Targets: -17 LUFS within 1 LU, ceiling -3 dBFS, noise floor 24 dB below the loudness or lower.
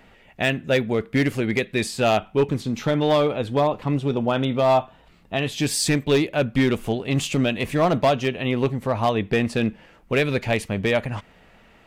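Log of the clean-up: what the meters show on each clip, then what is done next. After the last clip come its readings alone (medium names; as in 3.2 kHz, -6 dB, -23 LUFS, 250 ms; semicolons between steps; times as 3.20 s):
clipped samples 1.0%; clipping level -12.5 dBFS; loudness -22.5 LUFS; peak level -12.5 dBFS; loudness target -17.0 LUFS
-> clip repair -12.5 dBFS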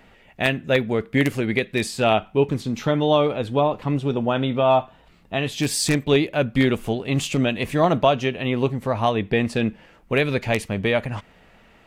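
clipped samples 0.0%; loudness -22.0 LUFS; peak level -3.5 dBFS; loudness target -17.0 LUFS
-> trim +5 dB; peak limiter -3 dBFS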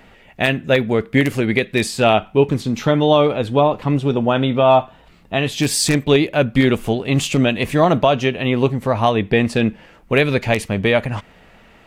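loudness -17.5 LUFS; peak level -3.0 dBFS; noise floor -48 dBFS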